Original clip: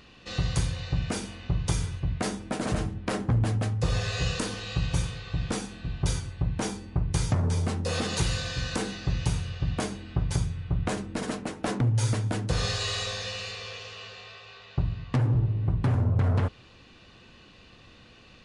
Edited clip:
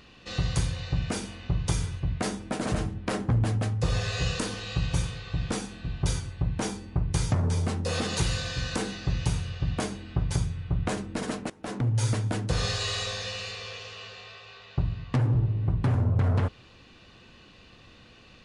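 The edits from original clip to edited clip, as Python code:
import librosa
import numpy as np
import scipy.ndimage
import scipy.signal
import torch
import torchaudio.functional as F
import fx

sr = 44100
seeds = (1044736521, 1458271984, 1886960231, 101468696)

y = fx.edit(x, sr, fx.fade_in_from(start_s=11.5, length_s=0.64, curve='qsin', floor_db=-18.5), tone=tone)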